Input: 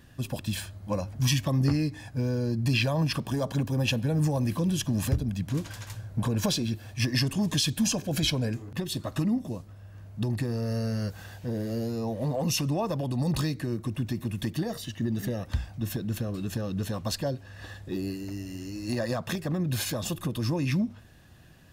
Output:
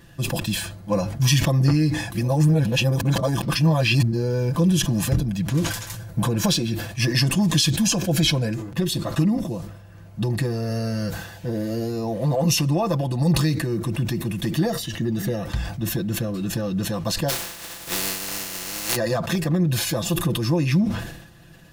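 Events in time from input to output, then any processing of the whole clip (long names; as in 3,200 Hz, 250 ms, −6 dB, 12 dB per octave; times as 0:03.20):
0:02.12–0:04.56: reverse
0:05.67–0:06.26: high-shelf EQ 5,500 Hz → 11,000 Hz +8.5 dB
0:17.28–0:18.95: compressing power law on the bin magnitudes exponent 0.2
whole clip: comb filter 5.9 ms, depth 61%; level that may fall only so fast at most 64 dB per second; level +4.5 dB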